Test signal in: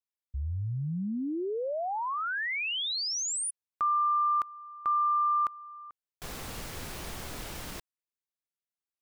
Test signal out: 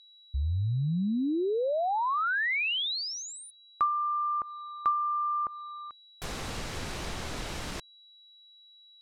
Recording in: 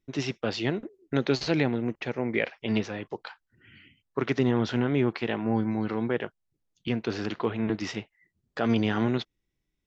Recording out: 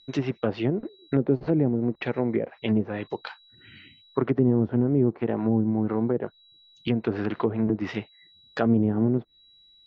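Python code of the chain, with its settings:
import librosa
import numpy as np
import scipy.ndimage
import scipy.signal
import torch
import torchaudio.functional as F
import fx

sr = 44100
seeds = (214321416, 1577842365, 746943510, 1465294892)

y = x + 10.0 ** (-58.0 / 20.0) * np.sin(2.0 * np.pi * 3900.0 * np.arange(len(x)) / sr)
y = fx.env_lowpass_down(y, sr, base_hz=480.0, full_db=-22.5)
y = F.gain(torch.from_numpy(y), 4.0).numpy()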